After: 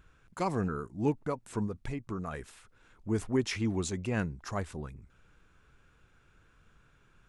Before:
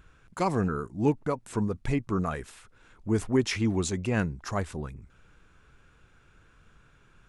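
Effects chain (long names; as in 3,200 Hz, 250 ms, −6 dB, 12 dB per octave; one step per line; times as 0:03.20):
0:01.66–0:02.34: downward compressor, threshold −28 dBFS, peak gain reduction 6 dB
level −4.5 dB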